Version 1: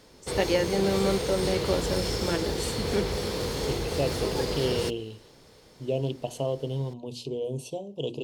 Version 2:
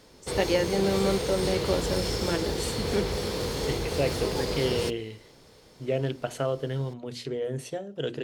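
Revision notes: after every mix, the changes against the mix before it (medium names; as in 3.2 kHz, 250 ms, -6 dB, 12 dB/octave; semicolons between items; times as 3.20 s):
second voice: remove Chebyshev band-stop 1–2.7 kHz, order 3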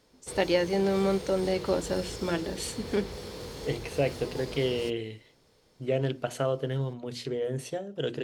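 background -10.0 dB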